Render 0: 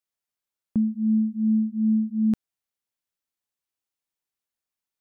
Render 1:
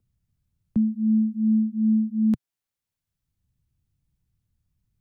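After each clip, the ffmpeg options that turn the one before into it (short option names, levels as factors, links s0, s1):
-filter_complex "[0:a]equalizer=f=130:w=1.7:g=4,acrossover=split=140|210[s0][s1][s2];[s0]acompressor=mode=upward:threshold=0.00631:ratio=2.5[s3];[s3][s1][s2]amix=inputs=3:normalize=0"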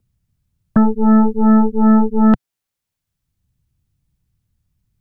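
-af "aeval=exprs='0.211*(cos(1*acos(clip(val(0)/0.211,-1,1)))-cos(1*PI/2))+0.0335*(cos(3*acos(clip(val(0)/0.211,-1,1)))-cos(3*PI/2))+0.0335*(cos(8*acos(clip(val(0)/0.211,-1,1)))-cos(8*PI/2))':c=same,acontrast=63,volume=1.78"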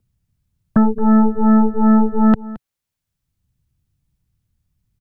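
-af "aecho=1:1:220:0.126,volume=0.891"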